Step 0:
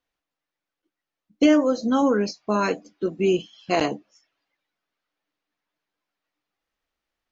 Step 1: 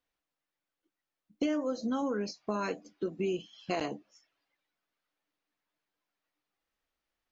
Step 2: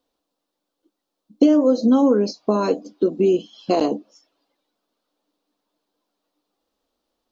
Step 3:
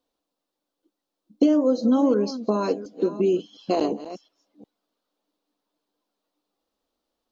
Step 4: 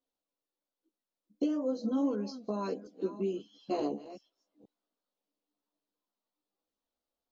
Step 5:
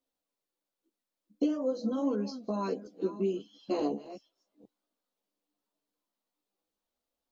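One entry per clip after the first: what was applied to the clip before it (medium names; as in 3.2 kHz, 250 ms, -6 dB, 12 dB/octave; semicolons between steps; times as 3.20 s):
compression 3:1, threshold -28 dBFS, peak gain reduction 11.5 dB; trim -3.5 dB
graphic EQ 125/250/500/1000/2000/4000 Hz -5/+11/+8/+5/-10/+7 dB; trim +6 dB
chunks repeated in reverse 357 ms, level -14 dB; trim -4 dB
chorus voices 2, 0.53 Hz, delay 15 ms, depth 1.1 ms; trim -8.5 dB
flange 0.82 Hz, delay 3.1 ms, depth 3.1 ms, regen -59%; trim +6 dB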